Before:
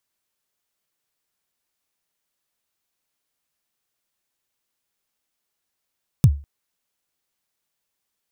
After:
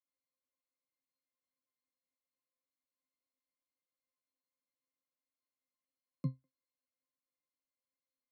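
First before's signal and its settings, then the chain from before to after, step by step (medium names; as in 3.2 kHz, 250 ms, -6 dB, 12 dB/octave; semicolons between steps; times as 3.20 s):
kick drum length 0.20 s, from 160 Hz, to 71 Hz, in 58 ms, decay 0.32 s, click on, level -5 dB
steep high-pass 170 Hz 48 dB/octave; pitch-class resonator C, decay 0.17 s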